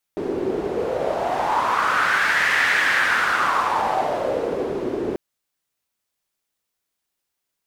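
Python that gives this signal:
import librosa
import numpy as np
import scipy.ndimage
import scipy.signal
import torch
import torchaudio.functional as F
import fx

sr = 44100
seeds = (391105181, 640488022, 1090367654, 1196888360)

y = fx.wind(sr, seeds[0], length_s=4.99, low_hz=360.0, high_hz=1800.0, q=4.1, gusts=1, swing_db=6.5)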